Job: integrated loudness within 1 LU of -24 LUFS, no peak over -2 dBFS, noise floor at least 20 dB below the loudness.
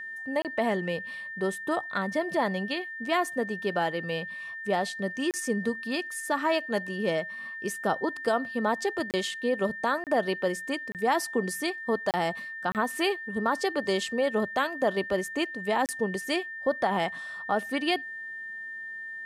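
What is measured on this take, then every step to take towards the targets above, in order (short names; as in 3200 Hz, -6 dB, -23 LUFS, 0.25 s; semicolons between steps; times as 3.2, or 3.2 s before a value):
dropouts 8; longest dropout 28 ms; steady tone 1800 Hz; tone level -36 dBFS; loudness -29.5 LUFS; peak -14.0 dBFS; loudness target -24.0 LUFS
-> interpolate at 0.42/5.31/9.11/10.04/10.92/12.11/12.72/15.86, 28 ms; notch 1800 Hz, Q 30; gain +5.5 dB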